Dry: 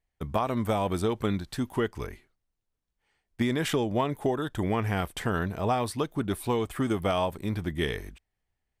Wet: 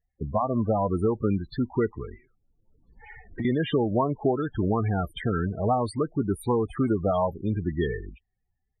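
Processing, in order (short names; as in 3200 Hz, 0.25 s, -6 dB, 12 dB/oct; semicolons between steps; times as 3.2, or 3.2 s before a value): loudest bins only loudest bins 16; 1.96–3.45 three-band squash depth 100%; gain +3.5 dB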